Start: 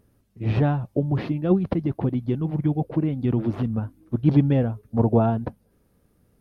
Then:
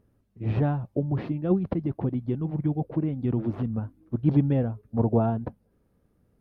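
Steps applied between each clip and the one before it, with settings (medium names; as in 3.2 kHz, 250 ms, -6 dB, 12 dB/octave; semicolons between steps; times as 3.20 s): treble shelf 2.7 kHz -9.5 dB; trim -3.5 dB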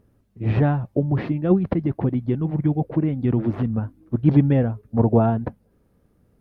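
dynamic bell 1.9 kHz, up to +5 dB, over -54 dBFS, Q 1.9; trim +5.5 dB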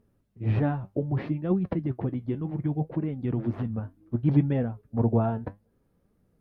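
flange 0.65 Hz, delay 4.3 ms, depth 7.1 ms, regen +65%; trim -2.5 dB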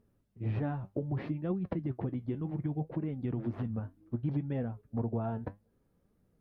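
compression 5:1, threshold -26 dBFS, peak gain reduction 10.5 dB; trim -3.5 dB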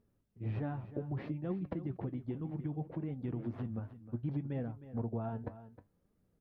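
delay 312 ms -14 dB; trim -4 dB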